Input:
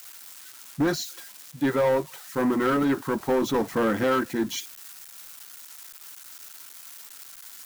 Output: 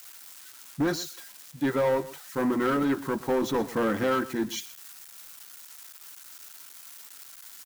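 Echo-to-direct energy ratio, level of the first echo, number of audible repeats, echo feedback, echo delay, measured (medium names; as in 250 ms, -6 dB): -17.5 dB, -17.5 dB, 1, no regular repeats, 124 ms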